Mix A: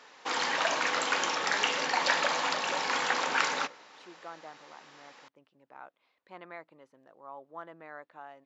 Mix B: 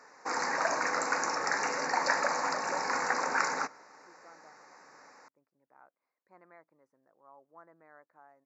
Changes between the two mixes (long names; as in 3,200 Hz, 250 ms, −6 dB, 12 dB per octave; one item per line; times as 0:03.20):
speech −11.0 dB
master: add Butterworth band-reject 3,200 Hz, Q 1.1